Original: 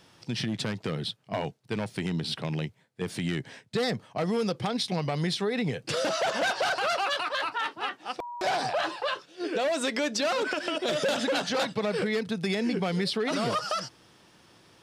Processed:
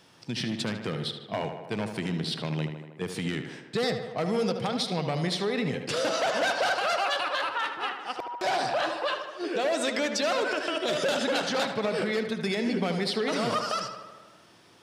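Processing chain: low shelf 69 Hz -10 dB; on a send: tape echo 76 ms, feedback 73%, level -7 dB, low-pass 3400 Hz

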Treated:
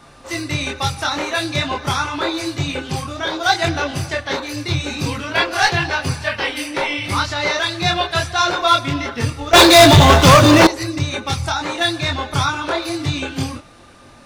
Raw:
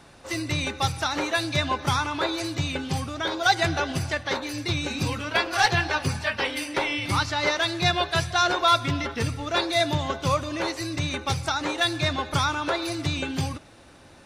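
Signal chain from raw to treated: whine 1200 Hz -56 dBFS; chorus voices 6, 0.77 Hz, delay 25 ms, depth 4.5 ms; 9.53–10.67 sample leveller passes 5; gain +8 dB

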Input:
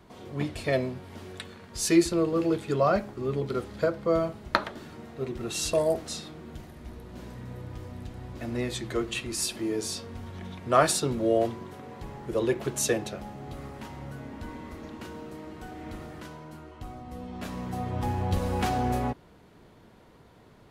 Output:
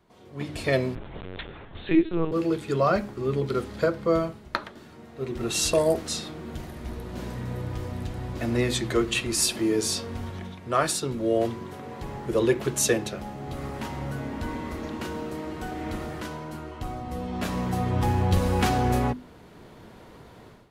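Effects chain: notches 50/100/150/200/250/300 Hz; dynamic EQ 680 Hz, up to -4 dB, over -41 dBFS, Q 2; AGC gain up to 16.5 dB; 0.95–2.32 LPC vocoder at 8 kHz pitch kept; gain -8.5 dB

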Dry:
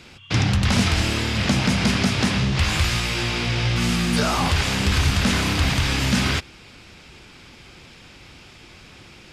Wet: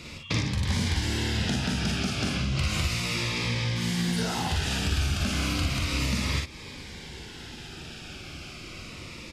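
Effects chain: compressor 12:1, threshold -28 dBFS, peak gain reduction 14 dB; on a send: early reflections 44 ms -4.5 dB, 57 ms -5.5 dB; on the sum: cascading phaser falling 0.33 Hz; gain +3 dB

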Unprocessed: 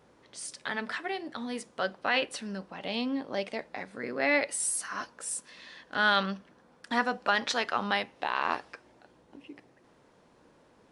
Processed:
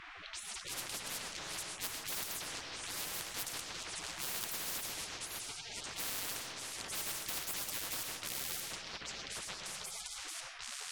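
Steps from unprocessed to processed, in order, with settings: G.711 law mismatch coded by mu; low-pass opened by the level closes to 690 Hz, open at -25.5 dBFS; on a send: delay with a stepping band-pass 0.791 s, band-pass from 970 Hz, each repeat 1.4 oct, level -11 dB; on the sum: spectral gate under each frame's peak -25 dB weak; digital reverb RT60 0.73 s, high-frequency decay 0.4×, pre-delay 70 ms, DRR 14.5 dB; spectral compressor 10:1; gain +6.5 dB

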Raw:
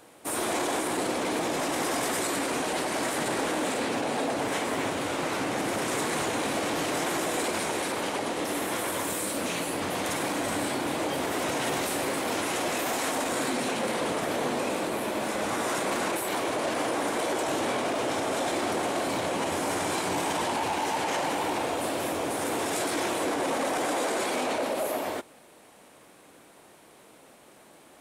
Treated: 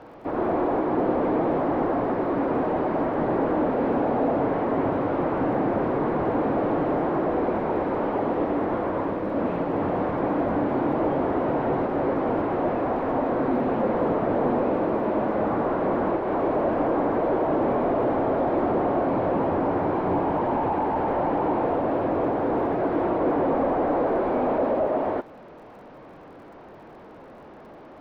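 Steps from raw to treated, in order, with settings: delta modulation 32 kbps, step -43.5 dBFS; LPF 1100 Hz 12 dB/oct; crackle 69/s -59 dBFS; gain +7.5 dB

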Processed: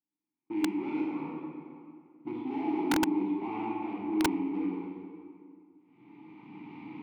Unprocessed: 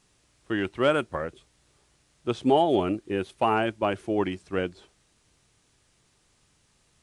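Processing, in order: rattling part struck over -30 dBFS, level -20 dBFS; recorder AGC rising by 14 dB/s; HPF 150 Hz 24 dB/oct; gate -48 dBFS, range -23 dB; careless resampling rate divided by 4×, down filtered, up hold; tone controls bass +9 dB, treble -4 dB; overloaded stage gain 25 dB; vowel filter u; low-pass opened by the level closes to 2100 Hz, open at -26 dBFS; reverb RT60 2.2 s, pre-delay 24 ms, DRR -5 dB; wrapped overs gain 20 dB

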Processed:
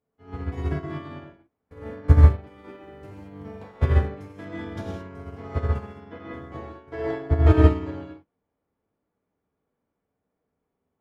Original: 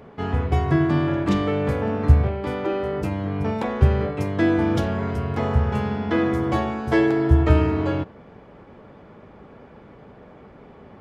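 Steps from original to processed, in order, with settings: 1.26–1.71 room tone; 2.4–3.59 crackle 470/s -47 dBFS; 6.01–7.41 high shelf 4900 Hz -11 dB; non-linear reverb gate 0.24 s flat, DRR -4.5 dB; upward expander 2.5:1, over -31 dBFS; gain -1.5 dB

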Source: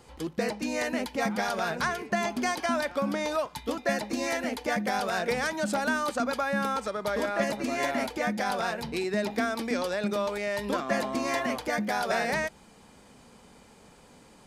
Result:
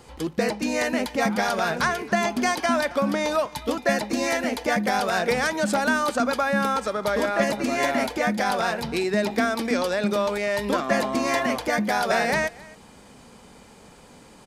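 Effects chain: echo 0.268 s -22 dB; gain +5.5 dB

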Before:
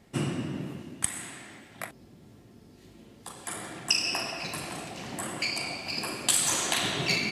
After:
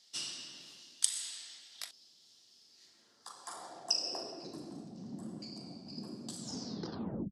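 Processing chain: tape stop at the end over 0.94 s; resonant high shelf 3500 Hz +13.5 dB, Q 3; band-pass sweep 3000 Hz -> 210 Hz, 2.55–4.91

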